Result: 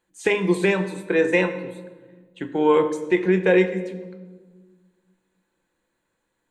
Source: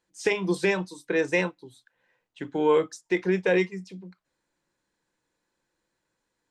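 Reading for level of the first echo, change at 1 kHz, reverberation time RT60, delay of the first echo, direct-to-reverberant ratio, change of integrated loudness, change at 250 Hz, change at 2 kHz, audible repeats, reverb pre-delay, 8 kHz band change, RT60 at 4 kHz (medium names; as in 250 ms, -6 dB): no echo, +5.0 dB, 1.4 s, no echo, 8.5 dB, +5.0 dB, +6.0 dB, +4.0 dB, no echo, 3 ms, no reading, 0.95 s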